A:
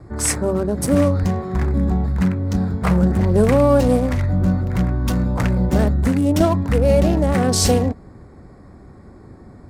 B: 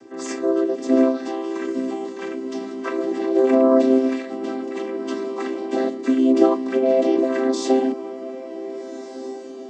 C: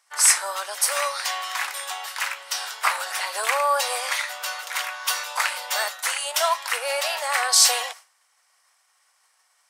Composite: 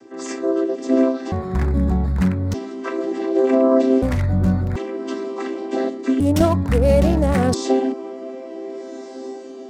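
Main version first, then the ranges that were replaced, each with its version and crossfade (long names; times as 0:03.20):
B
0:01.32–0:02.54: punch in from A
0:04.02–0:04.76: punch in from A
0:06.20–0:07.54: punch in from A
not used: C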